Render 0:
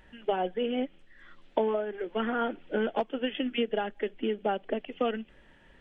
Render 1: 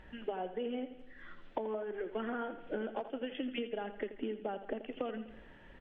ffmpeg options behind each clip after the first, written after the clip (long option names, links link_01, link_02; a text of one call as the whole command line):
ffmpeg -i in.wav -af "lowpass=frequency=2300:poles=1,acompressor=threshold=-38dB:ratio=6,aecho=1:1:83|166|249|332|415:0.251|0.131|0.0679|0.0353|0.0184,volume=2.5dB" out.wav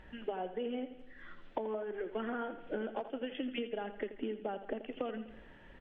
ffmpeg -i in.wav -af anull out.wav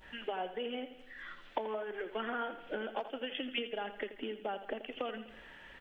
ffmpeg -i in.wav -af "adynamicequalizer=threshold=0.00112:dfrequency=1900:dqfactor=1.1:tfrequency=1900:tqfactor=1.1:attack=5:release=100:ratio=0.375:range=2:mode=cutabove:tftype=bell,acompressor=mode=upward:threshold=-58dB:ratio=2.5,tiltshelf=frequency=760:gain=-8,volume=2.5dB" out.wav